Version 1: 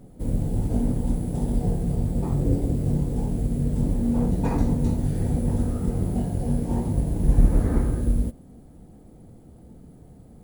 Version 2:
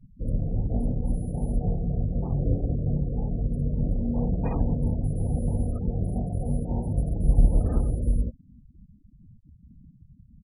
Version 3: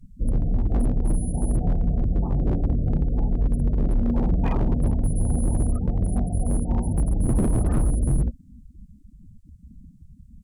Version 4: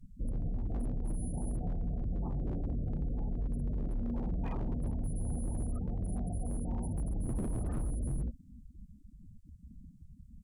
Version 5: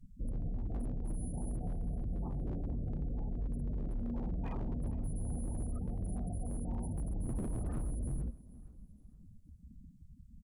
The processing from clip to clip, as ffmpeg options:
ffmpeg -i in.wav -af "afftfilt=real='re*gte(hypot(re,im),0.0251)':imag='im*gte(hypot(re,im),0.0251)':win_size=1024:overlap=0.75,aecho=1:1:1.6:0.35,volume=-3.5dB" out.wav
ffmpeg -i in.wav -af "equalizer=frequency=125:width_type=o:width=1:gain=-9,equalizer=frequency=500:width_type=o:width=1:gain=-10,equalizer=frequency=8000:width_type=o:width=1:gain=10,aeval=exprs='0.0708*(abs(mod(val(0)/0.0708+3,4)-2)-1)':channel_layout=same,volume=8.5dB" out.wav
ffmpeg -i in.wav -af "alimiter=limit=-22.5dB:level=0:latency=1:release=36,volume=-6dB" out.wav
ffmpeg -i in.wav -af "aecho=1:1:465|930|1395:0.1|0.034|0.0116,volume=-2.5dB" out.wav

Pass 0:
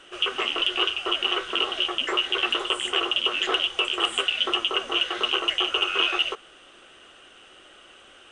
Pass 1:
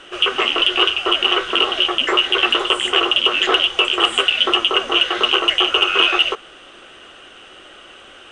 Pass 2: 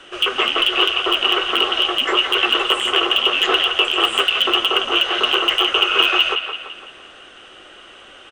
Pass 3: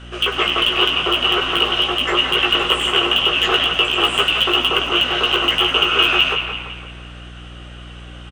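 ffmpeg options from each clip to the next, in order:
ffmpeg -i in.wav -af "highshelf=frequency=8600:gain=-9.5,acontrast=29,volume=4dB" out.wav
ffmpeg -i in.wav -filter_complex "[0:a]acrossover=split=250|380|4700[link_01][link_02][link_03][link_04];[link_03]aecho=1:1:169|338|507|676|845|1014:0.501|0.241|0.115|0.0554|0.0266|0.0128[link_05];[link_04]aeval=exprs='(mod(13.3*val(0)+1,2)-1)/13.3':channel_layout=same[link_06];[link_01][link_02][link_05][link_06]amix=inputs=4:normalize=0,volume=-1.5dB" out.wav
ffmpeg -i in.wav -filter_complex "[0:a]aeval=exprs='val(0)+0.0126*(sin(2*PI*60*n/s)+sin(2*PI*2*60*n/s)/2+sin(2*PI*3*60*n/s)/3+sin(2*PI*4*60*n/s)/4+sin(2*PI*5*60*n/s)/5)':channel_layout=same,asplit=2[link_01][link_02];[link_02]adelay=17,volume=-5dB[link_03];[link_01][link_03]amix=inputs=2:normalize=0,asplit=7[link_04][link_05][link_06][link_07][link_08][link_09][link_10];[link_05]adelay=100,afreqshift=-100,volume=-13dB[link_11];[link_06]adelay=200,afreqshift=-200,volume=-18dB[link_12];[link_07]adelay=300,afreqshift=-300,volume=-23.1dB[link_13];[link_08]adelay=400,afreqshift=-400,volume=-28.1dB[link_14];[link_09]adelay=500,afreqshift=-500,volume=-33.1dB[link_15];[link_10]adelay=600,afreqshift=-600,volume=-38.2dB[link_16];[link_04][link_11][link_12][link_13][link_14][link_15][link_16]amix=inputs=7:normalize=0,volume=-1dB" out.wav

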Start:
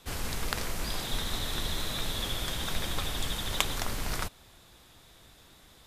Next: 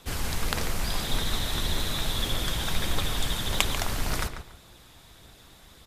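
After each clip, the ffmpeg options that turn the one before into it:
ffmpeg -i in.wav -filter_complex "[0:a]aphaser=in_gain=1:out_gain=1:delay=1.4:decay=0.21:speed=1.7:type=triangular,asplit=2[link_01][link_02];[link_02]adelay=142,lowpass=frequency=3000:poles=1,volume=-8.5dB,asplit=2[link_03][link_04];[link_04]adelay=142,lowpass=frequency=3000:poles=1,volume=0.26,asplit=2[link_05][link_06];[link_06]adelay=142,lowpass=frequency=3000:poles=1,volume=0.26[link_07];[link_01][link_03][link_05][link_07]amix=inputs=4:normalize=0,volume=3dB" out.wav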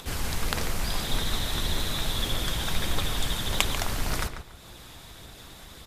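ffmpeg -i in.wav -af "acompressor=mode=upward:threshold=-37dB:ratio=2.5" out.wav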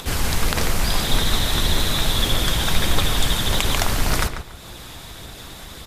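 ffmpeg -i in.wav -af "alimiter=level_in=9.5dB:limit=-1dB:release=50:level=0:latency=1,volume=-1dB" out.wav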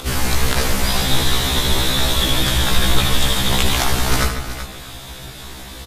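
ffmpeg -i in.wav -filter_complex "[0:a]asplit=2[link_01][link_02];[link_02]aecho=0:1:76|379:0.376|0.282[link_03];[link_01][link_03]amix=inputs=2:normalize=0,afftfilt=real='re*1.73*eq(mod(b,3),0)':imag='im*1.73*eq(mod(b,3),0)':win_size=2048:overlap=0.75,volume=5dB" out.wav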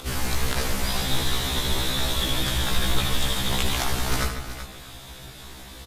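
ffmpeg -i in.wav -af "acrusher=bits=9:mode=log:mix=0:aa=0.000001,volume=-7.5dB" out.wav

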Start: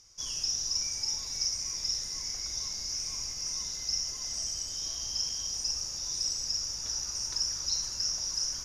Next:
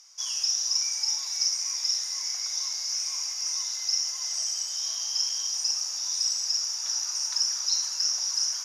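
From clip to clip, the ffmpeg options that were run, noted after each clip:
ffmpeg -i in.wav -af "highpass=frequency=730:width=0.5412,highpass=frequency=730:width=1.3066,volume=5dB" out.wav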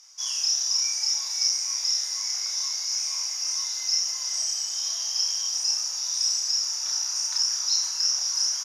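ffmpeg -i in.wav -filter_complex "[0:a]asplit=2[link_01][link_02];[link_02]adelay=30,volume=-2dB[link_03];[link_01][link_03]amix=inputs=2:normalize=0" out.wav

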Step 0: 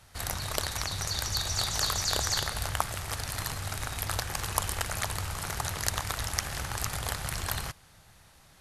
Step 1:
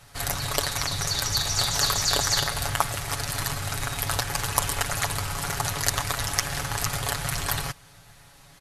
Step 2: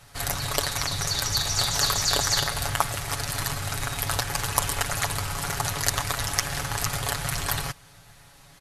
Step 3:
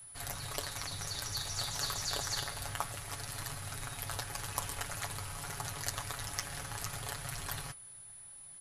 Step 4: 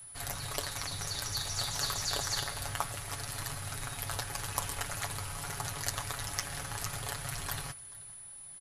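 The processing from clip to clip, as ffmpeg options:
ffmpeg -i in.wav -af "aecho=1:1:7.1:0.69,volume=4dB" out.wav
ffmpeg -i in.wav -af anull out.wav
ffmpeg -i in.wav -af "aeval=exprs='val(0)+0.0158*sin(2*PI*10000*n/s)':channel_layout=same,flanger=delay=7.6:depth=3.7:regen=-65:speed=0.53:shape=triangular,volume=-8.5dB" out.wav
ffmpeg -i in.wav -af "aecho=1:1:433:0.075,volume=2.5dB" out.wav

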